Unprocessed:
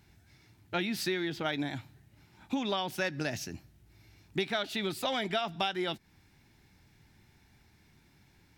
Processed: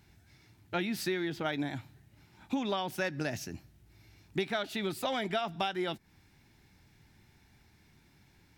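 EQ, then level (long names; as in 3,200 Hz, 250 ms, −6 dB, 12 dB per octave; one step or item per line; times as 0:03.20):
dynamic equaliser 3,900 Hz, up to −4 dB, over −48 dBFS, Q 0.79
0.0 dB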